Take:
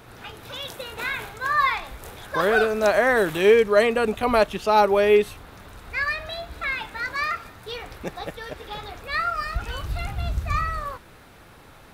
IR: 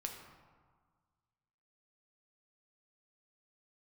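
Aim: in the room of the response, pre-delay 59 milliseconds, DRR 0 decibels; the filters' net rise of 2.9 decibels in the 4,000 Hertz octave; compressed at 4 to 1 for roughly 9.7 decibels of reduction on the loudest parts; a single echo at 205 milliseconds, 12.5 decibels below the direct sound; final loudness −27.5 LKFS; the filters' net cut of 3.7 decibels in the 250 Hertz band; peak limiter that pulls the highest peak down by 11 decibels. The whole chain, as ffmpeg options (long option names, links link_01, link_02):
-filter_complex "[0:a]equalizer=frequency=250:width_type=o:gain=-5,equalizer=frequency=4000:width_type=o:gain=3.5,acompressor=threshold=-25dB:ratio=4,alimiter=level_in=2dB:limit=-24dB:level=0:latency=1,volume=-2dB,aecho=1:1:205:0.237,asplit=2[link_01][link_02];[1:a]atrim=start_sample=2205,adelay=59[link_03];[link_02][link_03]afir=irnorm=-1:irlink=0,volume=1dB[link_04];[link_01][link_04]amix=inputs=2:normalize=0,volume=4.5dB"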